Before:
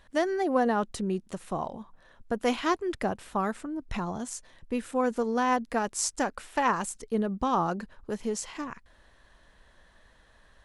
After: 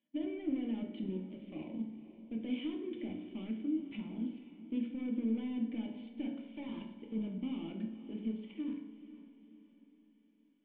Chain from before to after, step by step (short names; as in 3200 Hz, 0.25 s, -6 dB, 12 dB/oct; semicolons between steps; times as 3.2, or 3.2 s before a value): HPF 160 Hz 24 dB/oct; low shelf 230 Hz -6.5 dB; notches 60/120/180/240/300/360/420 Hz; level quantiser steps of 11 dB; sample leveller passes 3; limiter -22 dBFS, peak gain reduction 6 dB; soft clip -27.5 dBFS, distortion -14 dB; vocal tract filter i; diffused feedback echo 0.483 s, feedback 47%, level -14 dB; reverb RT60 0.85 s, pre-delay 3 ms, DRR 0.5 dB; gain +1.5 dB